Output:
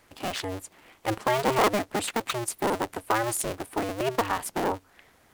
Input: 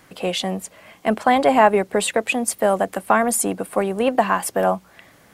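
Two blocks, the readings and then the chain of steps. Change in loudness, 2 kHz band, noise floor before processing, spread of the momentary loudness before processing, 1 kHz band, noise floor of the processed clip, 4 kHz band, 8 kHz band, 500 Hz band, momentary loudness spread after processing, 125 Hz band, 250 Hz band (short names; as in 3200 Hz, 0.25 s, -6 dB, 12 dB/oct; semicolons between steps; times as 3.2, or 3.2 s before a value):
-8.5 dB, -7.5 dB, -52 dBFS, 10 LU, -8.5 dB, -61 dBFS, -5.0 dB, -7.5 dB, -9.5 dB, 10 LU, -3.5 dB, -9.0 dB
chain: cycle switcher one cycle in 2, inverted; gain -8.5 dB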